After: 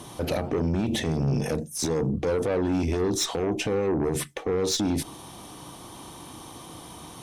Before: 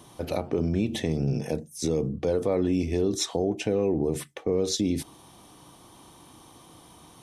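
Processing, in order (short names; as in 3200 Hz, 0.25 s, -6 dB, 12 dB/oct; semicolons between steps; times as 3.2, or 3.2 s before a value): added harmonics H 5 -16 dB, 8 -25 dB, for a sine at -14 dBFS; limiter -22.5 dBFS, peak gain reduction 9 dB; gain +3.5 dB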